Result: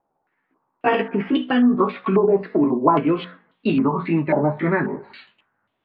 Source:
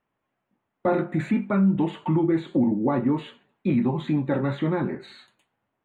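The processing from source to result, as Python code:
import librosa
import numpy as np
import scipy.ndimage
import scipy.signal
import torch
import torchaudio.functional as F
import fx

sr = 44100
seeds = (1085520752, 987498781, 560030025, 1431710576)

y = fx.pitch_glide(x, sr, semitones=5.5, runs='ending unshifted')
y = fx.hum_notches(y, sr, base_hz=60, count=3)
y = fx.filter_held_lowpass(y, sr, hz=3.7, low_hz=800.0, high_hz=3500.0)
y = y * librosa.db_to_amplitude(4.0)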